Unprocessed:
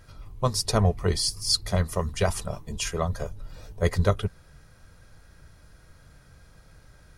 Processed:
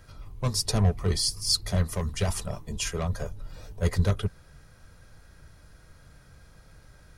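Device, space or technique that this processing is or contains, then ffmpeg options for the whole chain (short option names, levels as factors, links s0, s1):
one-band saturation: -filter_complex "[0:a]acrossover=split=270|4100[s0][s1][s2];[s1]asoftclip=type=tanh:threshold=0.0376[s3];[s0][s3][s2]amix=inputs=3:normalize=0"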